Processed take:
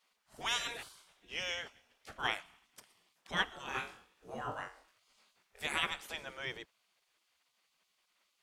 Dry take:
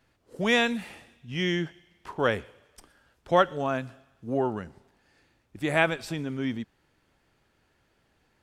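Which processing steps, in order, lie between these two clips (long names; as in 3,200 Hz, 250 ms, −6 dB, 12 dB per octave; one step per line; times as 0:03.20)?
0:03.66–0:05.67: flutter between parallel walls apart 3.7 metres, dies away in 0.33 s
gate on every frequency bin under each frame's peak −15 dB weak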